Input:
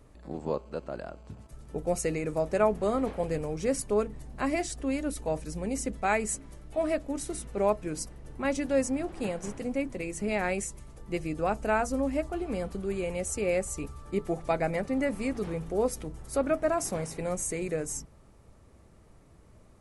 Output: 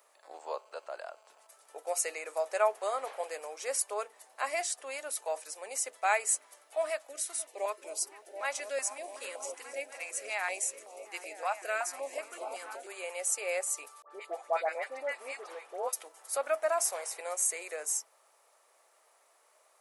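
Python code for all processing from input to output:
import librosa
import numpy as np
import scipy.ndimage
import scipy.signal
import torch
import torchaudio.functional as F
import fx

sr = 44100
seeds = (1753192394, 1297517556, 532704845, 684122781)

y = fx.chain(x, sr, fx.echo_opening(ms=243, hz=200, octaves=1, feedback_pct=70, wet_db=-3),
    fx.filter_held_notch(hz=5.3, low_hz=400.0, high_hz=1700.0), at=(6.9, 12.87))
y = fx.chain(y, sr, fx.lowpass(hz=3300.0, slope=6),
    fx.dispersion(late='highs', ms=87.0, hz=1400.0), at=(14.02, 15.93))
y = scipy.signal.sosfilt(scipy.signal.cheby2(4, 60, 180.0, 'highpass', fs=sr, output='sos'), y)
y = fx.high_shelf(y, sr, hz=9400.0, db=10.5)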